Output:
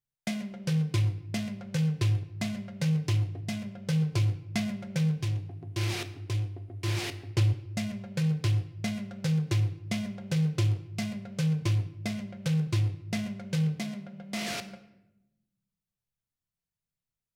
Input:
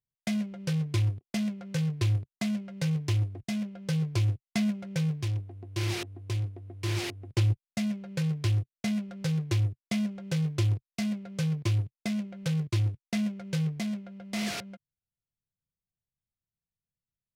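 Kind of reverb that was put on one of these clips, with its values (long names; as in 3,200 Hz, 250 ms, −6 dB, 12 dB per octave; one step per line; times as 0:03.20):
rectangular room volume 320 cubic metres, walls mixed, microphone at 0.39 metres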